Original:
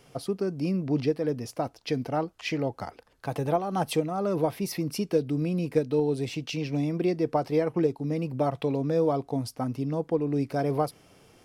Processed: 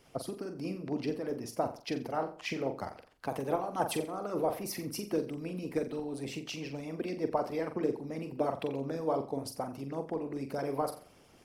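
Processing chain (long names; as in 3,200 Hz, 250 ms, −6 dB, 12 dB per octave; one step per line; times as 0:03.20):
flutter between parallel walls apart 7.5 metres, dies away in 0.45 s
dynamic equaliser 3,700 Hz, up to −5 dB, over −51 dBFS, Q 1
harmonic and percussive parts rebalanced harmonic −15 dB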